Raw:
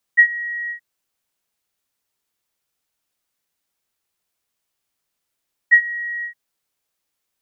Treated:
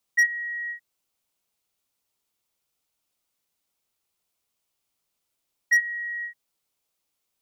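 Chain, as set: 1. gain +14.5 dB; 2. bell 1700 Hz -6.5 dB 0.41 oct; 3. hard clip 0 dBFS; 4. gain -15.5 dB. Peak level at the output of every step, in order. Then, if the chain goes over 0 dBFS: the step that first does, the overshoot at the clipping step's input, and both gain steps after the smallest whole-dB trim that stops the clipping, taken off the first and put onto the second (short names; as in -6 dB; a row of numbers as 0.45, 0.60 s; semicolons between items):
+10.0, +6.0, 0.0, -15.5 dBFS; step 1, 6.0 dB; step 1 +8.5 dB, step 4 -9.5 dB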